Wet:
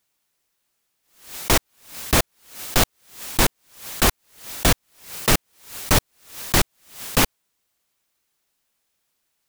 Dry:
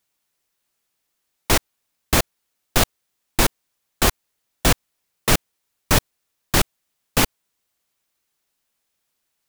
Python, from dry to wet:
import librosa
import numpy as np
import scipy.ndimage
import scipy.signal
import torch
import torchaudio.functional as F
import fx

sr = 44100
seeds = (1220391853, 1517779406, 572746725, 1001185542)

p1 = (np.mod(10.0 ** (10.5 / 20.0) * x + 1.0, 2.0) - 1.0) / 10.0 ** (10.5 / 20.0)
p2 = x + (p1 * 10.0 ** (-7.0 / 20.0))
p3 = fx.pre_swell(p2, sr, db_per_s=120.0)
y = p3 * 10.0 ** (-1.5 / 20.0)